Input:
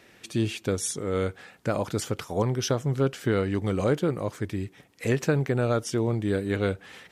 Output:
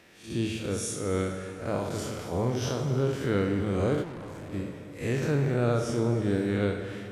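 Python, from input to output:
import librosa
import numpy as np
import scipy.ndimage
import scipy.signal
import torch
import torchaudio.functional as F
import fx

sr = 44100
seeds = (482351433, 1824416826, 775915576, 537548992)

y = fx.spec_blur(x, sr, span_ms=126.0)
y = fx.rev_plate(y, sr, seeds[0], rt60_s=2.9, hf_ratio=0.75, predelay_ms=0, drr_db=5.5)
y = fx.tube_stage(y, sr, drive_db=37.0, bias=0.75, at=(4.02, 4.52), fade=0.02)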